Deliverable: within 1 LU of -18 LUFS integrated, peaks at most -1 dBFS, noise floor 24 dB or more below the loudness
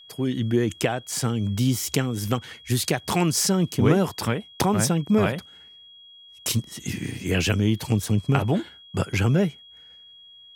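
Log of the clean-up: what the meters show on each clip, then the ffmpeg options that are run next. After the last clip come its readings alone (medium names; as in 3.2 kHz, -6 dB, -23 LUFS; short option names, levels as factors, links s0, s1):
steady tone 3.3 kHz; tone level -46 dBFS; loudness -24.0 LUFS; peak level -2.5 dBFS; loudness target -18.0 LUFS
-> -af "bandreject=f=3300:w=30"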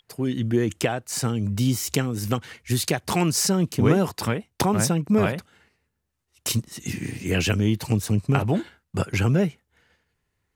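steady tone not found; loudness -24.0 LUFS; peak level -3.0 dBFS; loudness target -18.0 LUFS
-> -af "volume=2,alimiter=limit=0.891:level=0:latency=1"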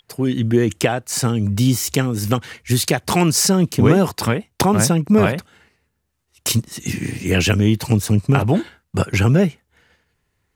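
loudness -18.0 LUFS; peak level -1.0 dBFS; noise floor -71 dBFS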